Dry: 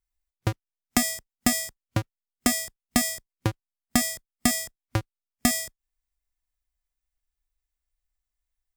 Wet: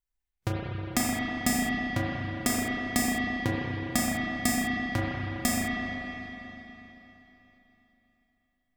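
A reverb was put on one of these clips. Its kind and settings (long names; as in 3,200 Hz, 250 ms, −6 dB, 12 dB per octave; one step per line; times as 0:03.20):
spring reverb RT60 3.6 s, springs 31/40 ms, chirp 60 ms, DRR −5.5 dB
level −5.5 dB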